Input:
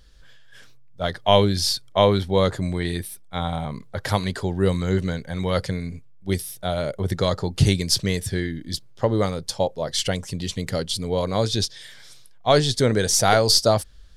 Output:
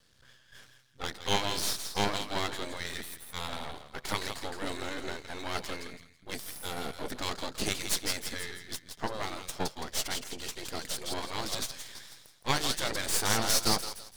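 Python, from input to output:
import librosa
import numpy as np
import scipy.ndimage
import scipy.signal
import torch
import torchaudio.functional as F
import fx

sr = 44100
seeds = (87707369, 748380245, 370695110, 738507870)

y = fx.echo_thinned(x, sr, ms=166, feedback_pct=33, hz=1200.0, wet_db=-7)
y = fx.spec_gate(y, sr, threshold_db=-10, keep='weak')
y = np.maximum(y, 0.0)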